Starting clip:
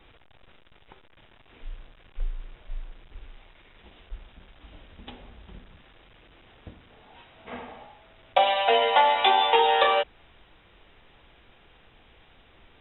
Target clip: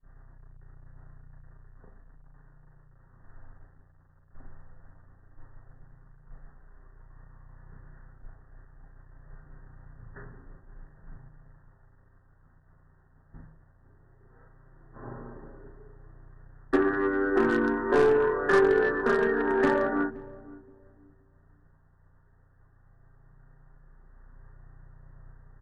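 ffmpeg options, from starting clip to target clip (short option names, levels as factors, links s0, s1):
-filter_complex "[0:a]acrossover=split=390[s0][s1];[s0]acompressor=threshold=0.0158:ratio=4[s2];[s2][s1]amix=inputs=2:normalize=0,aeval=exprs='val(0)+0.00631*(sin(2*PI*60*n/s)+sin(2*PI*2*60*n/s)/2+sin(2*PI*3*60*n/s)/3+sin(2*PI*4*60*n/s)/4+sin(2*PI*5*60*n/s)/5)':c=same,flanger=delay=15.5:depth=7.1:speed=0.23,aeval=exprs='0.168*(cos(1*acos(clip(val(0)/0.168,-1,1)))-cos(1*PI/2))+0.0168*(cos(2*acos(clip(val(0)/0.168,-1,1)))-cos(2*PI/2))+0.0075*(cos(3*acos(clip(val(0)/0.168,-1,1)))-cos(3*PI/2))+0.00596*(cos(4*acos(clip(val(0)/0.168,-1,1)))-cos(4*PI/2))':c=same,agate=range=0.0224:threshold=0.00708:ratio=3:detection=peak,equalizer=f=330:w=6.3:g=9,aecho=1:1:3.8:0.34,asplit=2[s3][s4];[s4]adelay=261,lowpass=f=950:p=1,volume=0.133,asplit=2[s5][s6];[s6]adelay=261,lowpass=f=950:p=1,volume=0.31,asplit=2[s7][s8];[s8]adelay=261,lowpass=f=950:p=1,volume=0.31[s9];[s5][s7][s9]amix=inputs=3:normalize=0[s10];[s3][s10]amix=inputs=2:normalize=0,asetrate=22050,aresample=44100,bandreject=f=76.54:t=h:w=4,bandreject=f=153.08:t=h:w=4,bandreject=f=229.62:t=h:w=4,bandreject=f=306.16:t=h:w=4,bandreject=f=382.7:t=h:w=4,bandreject=f=459.24:t=h:w=4,bandreject=f=535.78:t=h:w=4"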